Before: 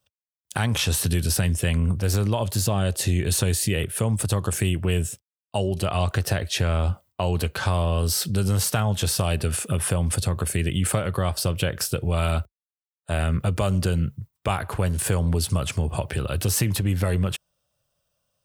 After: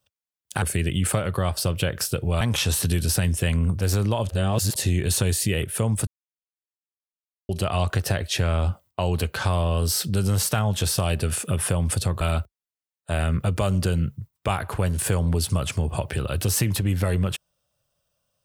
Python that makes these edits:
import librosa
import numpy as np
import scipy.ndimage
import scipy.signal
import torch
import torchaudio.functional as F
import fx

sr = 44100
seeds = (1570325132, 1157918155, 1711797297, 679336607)

y = fx.edit(x, sr, fx.reverse_span(start_s=2.5, length_s=0.47),
    fx.silence(start_s=4.28, length_s=1.42),
    fx.move(start_s=10.42, length_s=1.79, to_s=0.62), tone=tone)